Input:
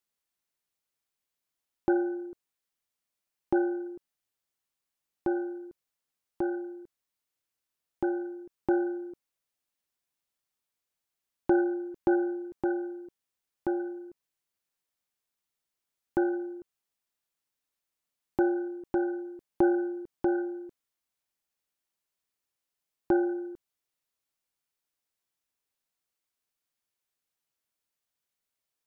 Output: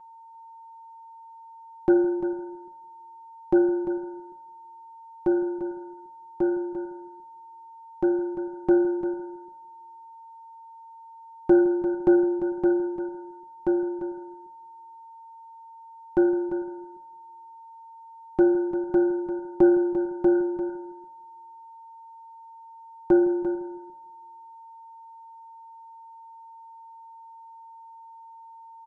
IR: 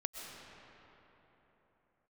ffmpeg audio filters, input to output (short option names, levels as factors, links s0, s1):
-filter_complex "[0:a]bandreject=f=54.65:t=h:w=4,bandreject=f=109.3:t=h:w=4,bandreject=f=163.95:t=h:w=4,bandreject=f=218.6:t=h:w=4,bandreject=f=273.25:t=h:w=4,bandreject=f=327.9:t=h:w=4,bandreject=f=382.55:t=h:w=4,bandreject=f=437.2:t=h:w=4,bandreject=f=491.85:t=h:w=4,bandreject=f=546.5:t=h:w=4,bandreject=f=601.15:t=h:w=4,bandreject=f=655.8:t=h:w=4,asplit=2[s0][s1];[s1]adelay=162,lowpass=f=1500:p=1,volume=0.178,asplit=2[s2][s3];[s3]adelay=162,lowpass=f=1500:p=1,volume=0.43,asplit=2[s4][s5];[s5]adelay=162,lowpass=f=1500:p=1,volume=0.43,asplit=2[s6][s7];[s7]adelay=162,lowpass=f=1500:p=1,volume=0.43[s8];[s2][s4][s6][s8]amix=inputs=4:normalize=0[s9];[s0][s9]amix=inputs=2:normalize=0,aeval=exprs='val(0)+0.00316*sin(2*PI*910*n/s)':c=same,asplit=2[s10][s11];[s11]aecho=0:1:346:0.299[s12];[s10][s12]amix=inputs=2:normalize=0,aresample=22050,aresample=44100,lowshelf=f=330:g=5.5,aecho=1:1:5.6:0.65"